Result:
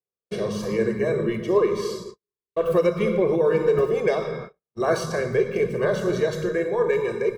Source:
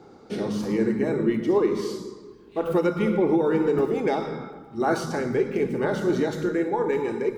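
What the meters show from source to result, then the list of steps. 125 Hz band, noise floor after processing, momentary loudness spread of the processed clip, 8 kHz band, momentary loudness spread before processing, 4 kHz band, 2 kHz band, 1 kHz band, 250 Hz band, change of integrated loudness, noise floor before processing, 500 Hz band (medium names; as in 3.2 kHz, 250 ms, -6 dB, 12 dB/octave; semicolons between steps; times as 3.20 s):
+1.5 dB, under -85 dBFS, 11 LU, no reading, 11 LU, +2.5 dB, +2.5 dB, -1.5 dB, -3.5 dB, +1.5 dB, -49 dBFS, +3.0 dB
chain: gate -35 dBFS, range -52 dB; comb 1.8 ms, depth 93%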